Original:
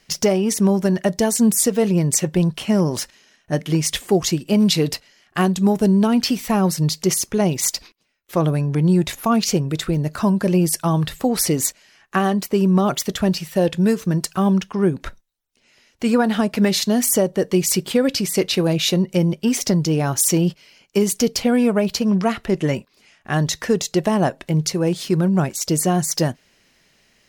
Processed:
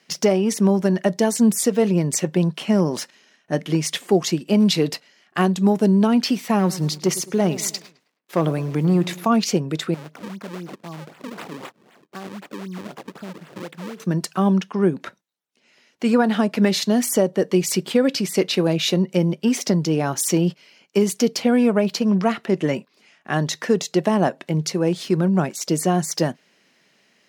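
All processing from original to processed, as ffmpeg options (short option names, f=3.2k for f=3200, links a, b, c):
-filter_complex "[0:a]asettb=1/sr,asplit=3[a][b][c];[a]atrim=end=6.594[d];[b]atrim=start=6.59:end=9.26,asetpts=PTS-STARTPTS,afade=t=in:d=0.004:c=qsin,afade=t=out:st=2.666:d=0.004:c=qsin,acrusher=bits=8:dc=4:mix=0:aa=0.000001,asoftclip=type=hard:threshold=-11dB,asplit=2[e][f];[f]adelay=106,lowpass=f=2.8k:p=1,volume=-16dB,asplit=2[g][h];[h]adelay=106,lowpass=f=2.8k:p=1,volume=0.46,asplit=2[i][j];[j]adelay=106,lowpass=f=2.8k:p=1,volume=0.46,asplit=2[k][l];[l]adelay=106,lowpass=f=2.8k:p=1,volume=0.46[m];[e][g][i][k][m]amix=inputs=5:normalize=0,atrim=end_sample=117747[n];[c]atrim=start=9.256[o];[d][n]acrossfade=d=0.004:c1=hsin:c2=qsin[p];[p][o]acrossfade=d=0.004:c1=qsin:c2=hsin,asettb=1/sr,asplit=3[q][r][s];[q]atrim=end=9.944[t];[r]atrim=start=9.94:end=14,asetpts=PTS-STARTPTS,afade=t=in:d=0.004:c=qsin,afade=t=out:st=4.056:d=0.004:c=qsin,acompressor=threshold=-43dB:ratio=2:attack=3.2:release=140:knee=1:detection=peak,acrusher=samples=36:mix=1:aa=0.000001:lfo=1:lforange=57.6:lforate=3.9[u];[s]atrim=start=13.996[v];[t][u]acrossfade=d=0.004:c1=hsin:c2=qsin[w];[w][v]acrossfade=d=0.004:c1=qsin:c2=hsin,highpass=f=160:w=0.5412,highpass=f=160:w=1.3066,highshelf=f=6.7k:g=-8.5"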